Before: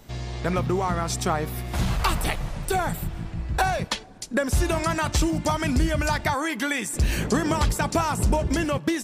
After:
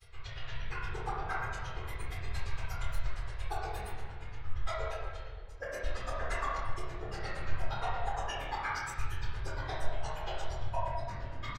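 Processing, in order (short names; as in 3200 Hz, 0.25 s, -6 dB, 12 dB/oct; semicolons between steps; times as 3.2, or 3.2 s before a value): median-filter separation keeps harmonic; feedback echo 86 ms, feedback 37%, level -16 dB; grains 49 ms, grains 11/s, spray 16 ms, pitch spread up and down by 7 st; compressor, threshold -29 dBFS, peak gain reduction 9.5 dB; whisperiser; passive tone stack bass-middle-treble 10-0-10; notches 50/100/150 Hz; reverb RT60 1.5 s, pre-delay 15 ms, DRR -6 dB; varispeed -22%; doubler 25 ms -6 dB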